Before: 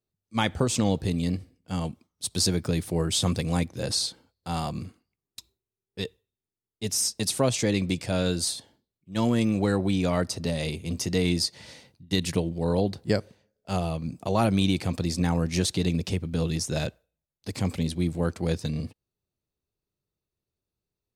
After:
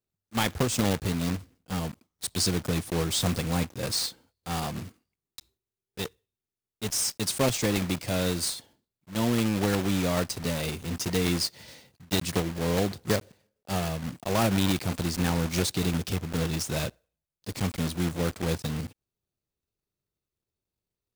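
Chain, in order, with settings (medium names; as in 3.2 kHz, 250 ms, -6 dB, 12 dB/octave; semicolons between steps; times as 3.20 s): block-companded coder 3-bit; trim -2 dB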